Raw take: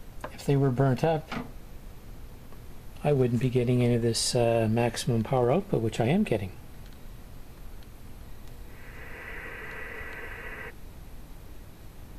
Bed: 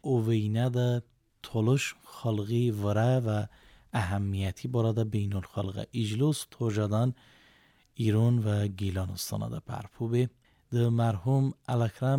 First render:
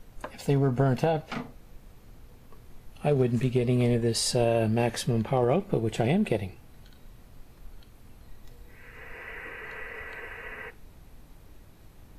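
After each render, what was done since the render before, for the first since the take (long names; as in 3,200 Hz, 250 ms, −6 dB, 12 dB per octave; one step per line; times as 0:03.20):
noise reduction from a noise print 6 dB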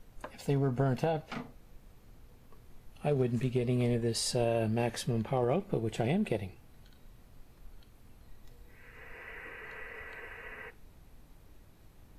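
level −5.5 dB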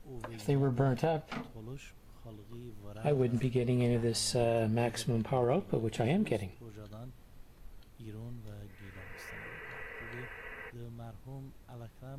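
mix in bed −20.5 dB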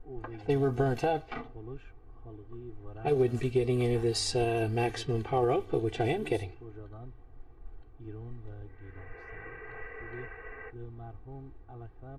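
low-pass that shuts in the quiet parts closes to 970 Hz, open at −26 dBFS
comb filter 2.6 ms, depth 95%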